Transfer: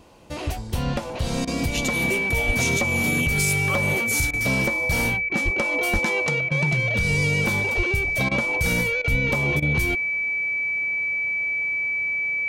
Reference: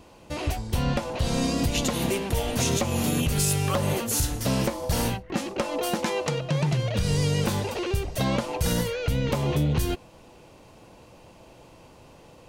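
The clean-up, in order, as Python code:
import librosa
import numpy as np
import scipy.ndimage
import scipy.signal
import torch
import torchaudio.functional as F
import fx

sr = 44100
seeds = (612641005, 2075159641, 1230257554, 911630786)

y = fx.notch(x, sr, hz=2300.0, q=30.0)
y = fx.fix_deplosive(y, sr, at_s=(2.46, 5.44, 5.92, 7.76, 9.1))
y = fx.fix_interpolate(y, sr, at_s=(1.45, 4.31, 5.29, 6.49, 8.29, 9.02, 9.6), length_ms=22.0)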